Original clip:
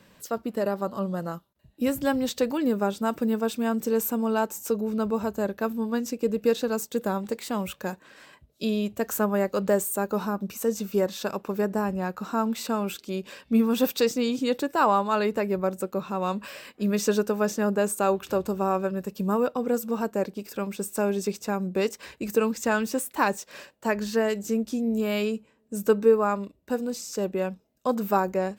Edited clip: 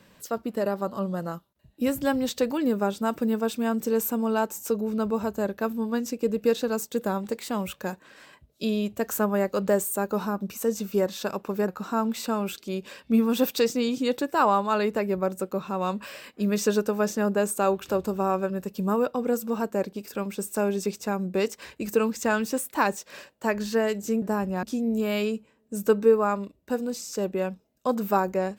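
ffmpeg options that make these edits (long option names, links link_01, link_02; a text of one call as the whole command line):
ffmpeg -i in.wav -filter_complex "[0:a]asplit=4[link_01][link_02][link_03][link_04];[link_01]atrim=end=11.682[link_05];[link_02]atrim=start=12.088:end=24.632[link_06];[link_03]atrim=start=11.678:end=12.092[link_07];[link_04]atrim=start=24.628[link_08];[link_05][link_06]acrossfade=duration=0.004:curve1=hsin:curve2=hsin[link_09];[link_09][link_07]acrossfade=duration=0.004:curve1=hsin:curve2=hsin[link_10];[link_10][link_08]acrossfade=duration=0.004:curve1=hsin:curve2=hsin" out.wav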